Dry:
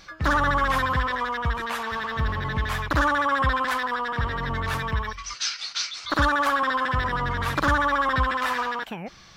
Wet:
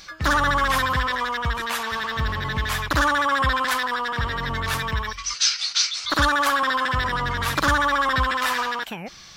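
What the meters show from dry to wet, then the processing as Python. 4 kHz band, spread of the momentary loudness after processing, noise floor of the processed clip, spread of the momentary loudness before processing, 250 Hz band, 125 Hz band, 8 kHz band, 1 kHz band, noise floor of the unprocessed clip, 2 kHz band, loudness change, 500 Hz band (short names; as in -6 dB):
+7.0 dB, 7 LU, -39 dBFS, 7 LU, 0.0 dB, 0.0 dB, +9.0 dB, +1.5 dB, -45 dBFS, +3.0 dB, +2.5 dB, +0.5 dB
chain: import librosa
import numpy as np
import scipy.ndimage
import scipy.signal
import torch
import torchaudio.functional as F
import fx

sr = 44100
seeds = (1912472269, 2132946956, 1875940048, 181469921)

y = fx.high_shelf(x, sr, hz=2800.0, db=10.5)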